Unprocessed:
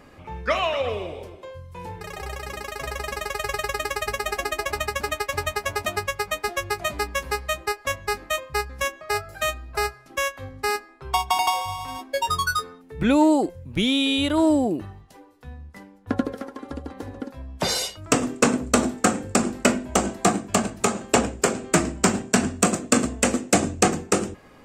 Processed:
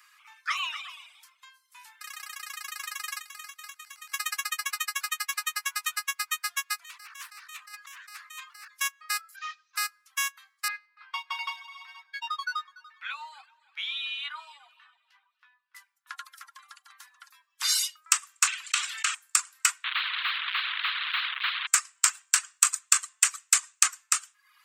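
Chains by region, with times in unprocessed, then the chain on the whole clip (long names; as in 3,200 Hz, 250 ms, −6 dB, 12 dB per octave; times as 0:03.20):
0:03.20–0:04.12: volume swells 165 ms + downward compressor 3 to 1, threshold −37 dBFS + double-tracking delay 25 ms −7 dB
0:06.84–0:08.68: parametric band 110 Hz +7 dB 0.76 octaves + compressor whose output falls as the input rises −35 dBFS + highs frequency-modulated by the lows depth 0.39 ms
0:09.36–0:09.76: variable-slope delta modulation 32 kbit/s + string-ensemble chorus
0:10.68–0:15.75: high-frequency loss of the air 320 metres + double-tracking delay 14 ms −6.5 dB + echo machine with several playback heads 96 ms, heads first and third, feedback 44%, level −19 dB
0:18.47–0:19.15: resonant band-pass 2,800 Hz, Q 1.1 + parametric band 2,900 Hz +4.5 dB + envelope flattener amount 70%
0:19.84–0:21.67: linear delta modulator 16 kbit/s, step −25.5 dBFS + linear-phase brick-wall high-pass 630 Hz + every bin compressed towards the loudest bin 4 to 1
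whole clip: Butterworth high-pass 1,100 Hz 48 dB per octave; reverb reduction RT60 0.6 s; high-shelf EQ 4,300 Hz +10 dB; level −4.5 dB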